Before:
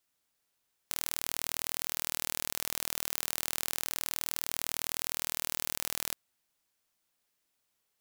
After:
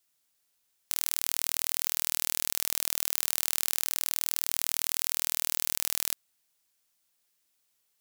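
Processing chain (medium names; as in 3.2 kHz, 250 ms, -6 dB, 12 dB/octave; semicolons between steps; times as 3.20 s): treble shelf 2.7 kHz +8 dB; trim -2 dB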